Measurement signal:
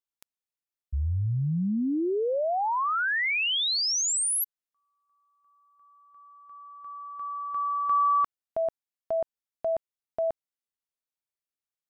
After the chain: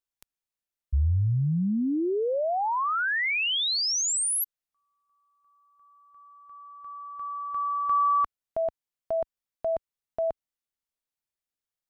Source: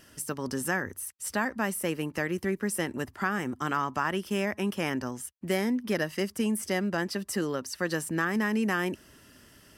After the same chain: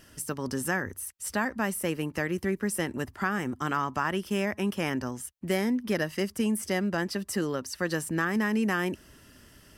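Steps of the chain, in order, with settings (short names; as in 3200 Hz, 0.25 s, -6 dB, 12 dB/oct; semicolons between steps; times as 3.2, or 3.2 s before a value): low shelf 75 Hz +9 dB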